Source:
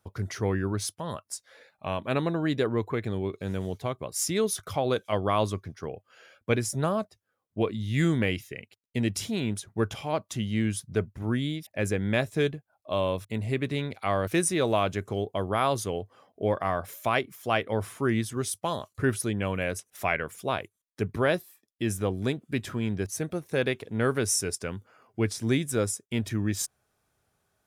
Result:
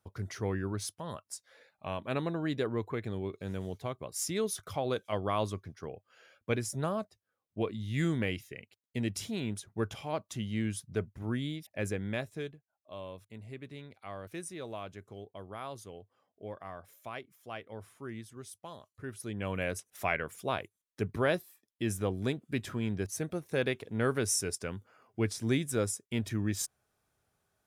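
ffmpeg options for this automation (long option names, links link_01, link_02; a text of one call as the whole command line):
ffmpeg -i in.wav -af "volume=6.5dB,afade=type=out:start_time=11.84:duration=0.71:silence=0.298538,afade=type=in:start_time=19.13:duration=0.47:silence=0.237137" out.wav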